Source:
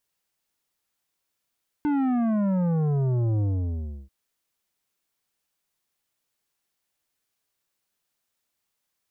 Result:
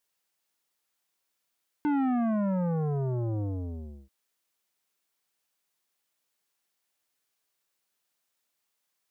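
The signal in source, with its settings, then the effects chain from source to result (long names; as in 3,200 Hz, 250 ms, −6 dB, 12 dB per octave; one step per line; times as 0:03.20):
bass drop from 300 Hz, over 2.24 s, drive 10.5 dB, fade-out 0.68 s, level −22 dB
low-shelf EQ 160 Hz −11 dB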